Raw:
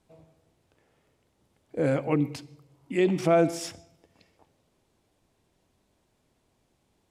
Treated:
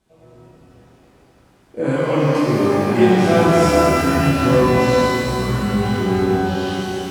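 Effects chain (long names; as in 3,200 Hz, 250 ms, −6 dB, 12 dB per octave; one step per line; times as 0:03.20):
delay with pitch and tempo change per echo 81 ms, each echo −5 semitones, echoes 3
reverb with rising layers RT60 3.5 s, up +12 semitones, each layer −8 dB, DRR −9.5 dB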